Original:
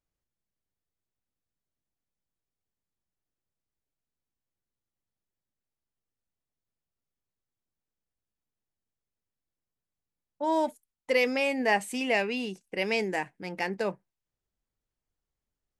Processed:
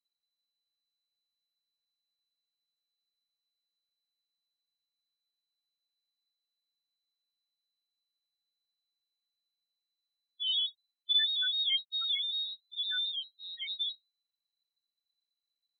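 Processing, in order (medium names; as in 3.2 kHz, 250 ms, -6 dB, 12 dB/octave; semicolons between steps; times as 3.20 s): loudest bins only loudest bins 2; frequency inversion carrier 4 kHz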